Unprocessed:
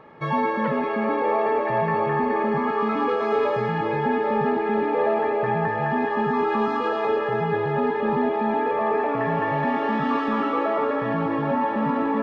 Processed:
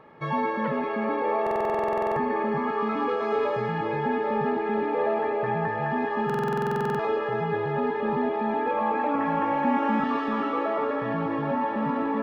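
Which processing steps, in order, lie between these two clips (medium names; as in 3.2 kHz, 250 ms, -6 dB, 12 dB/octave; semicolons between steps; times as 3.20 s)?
8.67–10.04 s: comb 3.7 ms, depth 92%; buffer glitch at 1.42/6.25 s, samples 2048, times 15; trim -3.5 dB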